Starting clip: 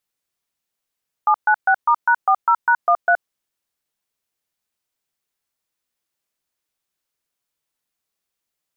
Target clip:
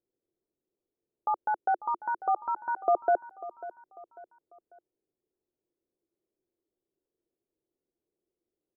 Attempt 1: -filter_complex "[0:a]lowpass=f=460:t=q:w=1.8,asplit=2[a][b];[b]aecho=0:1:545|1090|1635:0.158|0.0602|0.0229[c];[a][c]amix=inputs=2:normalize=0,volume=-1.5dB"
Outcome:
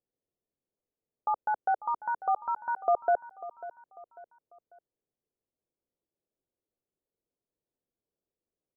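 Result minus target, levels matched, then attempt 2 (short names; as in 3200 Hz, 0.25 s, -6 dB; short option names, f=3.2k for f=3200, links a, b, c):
250 Hz band -9.5 dB
-filter_complex "[0:a]lowpass=f=460:t=q:w=1.8,equalizer=f=350:t=o:w=0.5:g=12.5,asplit=2[a][b];[b]aecho=0:1:545|1090|1635:0.158|0.0602|0.0229[c];[a][c]amix=inputs=2:normalize=0,volume=-1.5dB"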